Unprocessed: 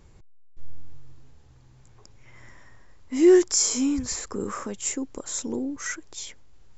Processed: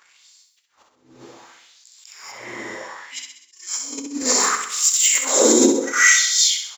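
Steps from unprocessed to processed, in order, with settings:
low-shelf EQ 200 Hz +5 dB
leveller curve on the samples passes 1
reverb whose tail is shaped and stops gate 270 ms rising, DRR −6 dB
compressor whose output falls as the input rises −21 dBFS, ratio −0.5
0:04.61–0:05.22: hard clipping −13 dBFS, distortion −21 dB
auto-filter high-pass sine 0.67 Hz 320–4,800 Hz
on a send: repeating echo 65 ms, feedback 51%, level −7 dB
on the sum: level that may rise only so fast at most 160 dB per second
level +1.5 dB

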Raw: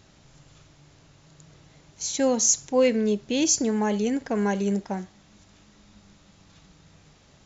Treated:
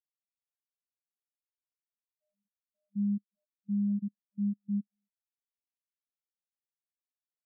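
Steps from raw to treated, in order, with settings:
treble cut that deepens with the level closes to 1,000 Hz
channel vocoder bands 32, square 203 Hz
output level in coarse steps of 23 dB
every bin expanded away from the loudest bin 2.5 to 1
level −6.5 dB

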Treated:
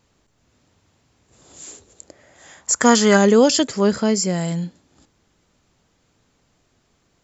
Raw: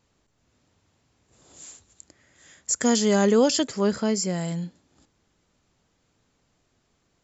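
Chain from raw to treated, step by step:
0:01.66–0:03.16: parametric band 360 Hz → 1,500 Hz +12 dB 1.1 octaves
level +5.5 dB

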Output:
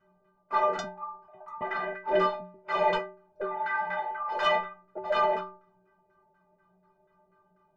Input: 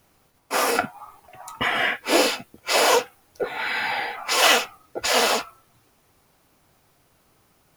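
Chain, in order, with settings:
auto-filter low-pass saw down 4.1 Hz 580–1,500 Hz
harmonic generator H 5 −7 dB, 8 −28 dB, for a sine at −2 dBFS
stiff-string resonator 180 Hz, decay 0.58 s, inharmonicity 0.03

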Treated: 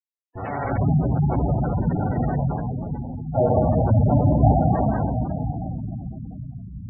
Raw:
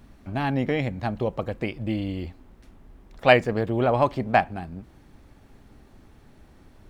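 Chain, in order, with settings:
loose part that buzzes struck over −40 dBFS, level −10 dBFS
comparator with hysteresis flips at −14.5 dBFS
parametric band 770 Hz +7.5 dB 0.81 octaves
on a send: feedback delay with all-pass diffusion 476 ms, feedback 45%, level −16 dB
on the sum: convolution reverb RT60 3.6 s, pre-delay 77 ms
reversed playback
upward compression, threshold −32 dBFS
reversed playback
gate on every frequency bin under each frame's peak −15 dB strong

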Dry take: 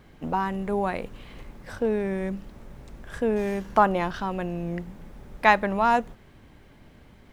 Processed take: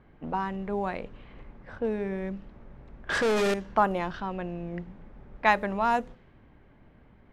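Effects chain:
hum removal 83.92 Hz, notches 7
0:03.09–0:03.54: mid-hump overdrive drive 32 dB, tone 7,900 Hz, clips at −14.5 dBFS
low-pass that shuts in the quiet parts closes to 1,900 Hz, open at −16.5 dBFS
level −4 dB

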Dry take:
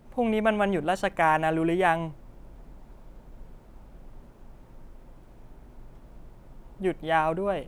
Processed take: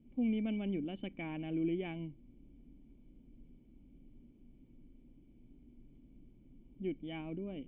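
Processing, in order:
formant resonators in series i

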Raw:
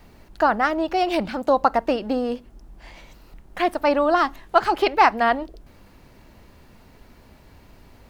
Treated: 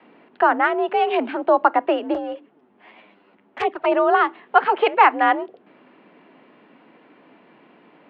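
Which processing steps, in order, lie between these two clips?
single-sideband voice off tune +53 Hz 150–3,100 Hz
0:02.14–0:03.92: flanger swept by the level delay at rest 11 ms, full sweep at −16.5 dBFS
level +2 dB

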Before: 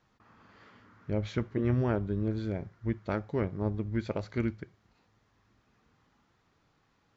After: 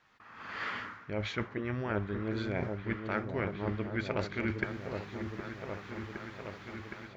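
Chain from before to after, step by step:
parametric band 2,000 Hz +11 dB 2.3 octaves
reversed playback
downward compressor 16 to 1, threshold −42 dBFS, peak gain reduction 22 dB
reversed playback
low-shelf EQ 240 Hz −5 dB
automatic gain control gain up to 16.5 dB
echo whose low-pass opens from repeat to repeat 765 ms, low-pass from 750 Hz, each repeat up 1 octave, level −6 dB
level −3 dB

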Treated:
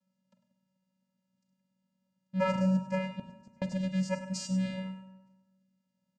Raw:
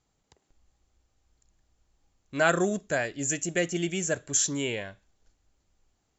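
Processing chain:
sub-octave generator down 2 octaves, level −4 dB
channel vocoder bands 8, square 188 Hz
0:03.01–0:03.62: gate with flip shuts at −26 dBFS, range −36 dB
single-tap delay 100 ms −12 dB
convolution reverb RT60 1.1 s, pre-delay 4 ms, DRR 9 dB
level −1.5 dB

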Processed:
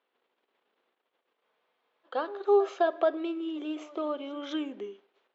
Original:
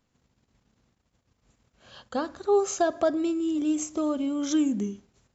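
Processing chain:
Chebyshev band-pass filter 390–3,400 Hz, order 3
backwards echo 208 ms −19.5 dB
frozen spectrum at 0:01.44, 0.61 s

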